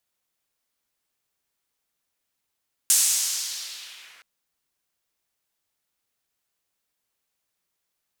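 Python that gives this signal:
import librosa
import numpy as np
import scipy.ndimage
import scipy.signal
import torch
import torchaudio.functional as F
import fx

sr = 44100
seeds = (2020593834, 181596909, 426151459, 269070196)

y = fx.riser_noise(sr, seeds[0], length_s=1.32, colour='white', kind='bandpass', start_hz=8200.0, end_hz=1700.0, q=1.6, swell_db=-30.5, law='linear')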